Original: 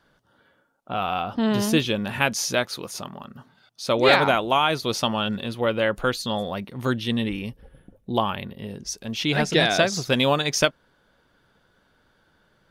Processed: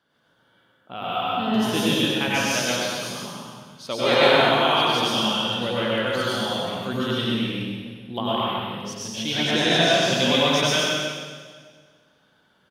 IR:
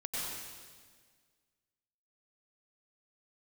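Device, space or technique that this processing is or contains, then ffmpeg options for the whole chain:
PA in a hall: -filter_complex "[0:a]highpass=110,equalizer=f=3.2k:t=o:w=0.38:g=6,aecho=1:1:127:0.562[a];[1:a]atrim=start_sample=2205[b];[a][b]afir=irnorm=-1:irlink=0,volume=-4dB"

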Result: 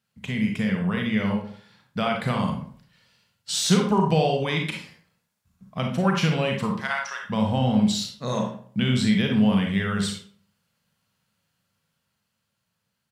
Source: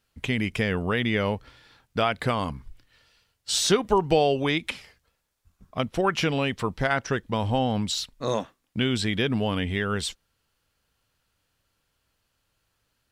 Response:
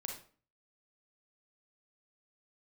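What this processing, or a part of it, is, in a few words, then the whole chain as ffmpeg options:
far laptop microphone: -filter_complex "[0:a]asettb=1/sr,asplit=3[a][b][c];[a]atrim=end=6.724[d];[b]atrim=start=6.72:end=7.23,asetpts=PTS-STARTPTS,afade=t=in:d=0.004:c=qsin,afade=t=out:st=0.506:d=0.004:c=qsin,highpass=f=850:w=0.5412,highpass=f=850:w=1.3066[e];[c]atrim=start=7.226[f];[d][e]acrossfade=d=0.004:c1=hsin:c2=qsin[g];[g][f]acrossfade=d=0.004:c1=qsin:c2=hsin,lowshelf=f=240:t=q:w=3:g=7,asplit=2[h][i];[i]adelay=80,lowpass=f=1.6k:p=1,volume=-14dB,asplit=2[j][k];[k]adelay=80,lowpass=f=1.6k:p=1,volume=0.42,asplit=2[l][m];[m]adelay=80,lowpass=f=1.6k:p=1,volume=0.42,asplit=2[n][o];[o]adelay=80,lowpass=f=1.6k:p=1,volume=0.42[p];[h][j][l][n][p]amix=inputs=5:normalize=0[q];[1:a]atrim=start_sample=2205[r];[q][r]afir=irnorm=-1:irlink=0,highpass=170,dynaudnorm=f=270:g=13:m=4dB,volume=-2dB"

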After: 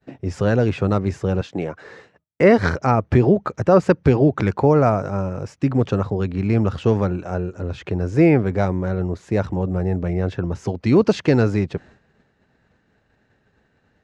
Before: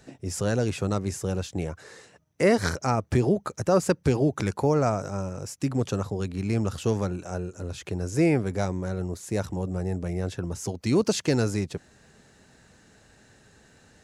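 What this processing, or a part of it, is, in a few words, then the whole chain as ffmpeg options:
hearing-loss simulation: -filter_complex "[0:a]asettb=1/sr,asplit=3[a][b][c];[a]atrim=end=1.414[d];[b]atrim=start=1.41:end=1.86,asetpts=PTS-STARTPTS,afade=t=in:d=0.004:c=qsin,afade=t=out:st=0.446:d=0.004:c=qsin,highpass=190[e];[c]atrim=start=1.856[f];[d][e]acrossfade=d=0.004:c1=hsin:c2=qsin[g];[g][f]acrossfade=d=0.004:c1=qsin:c2=hsin,lowpass=2.7k,agate=range=-33dB:threshold=-47dB:ratio=3:detection=peak,volume=7.5dB"

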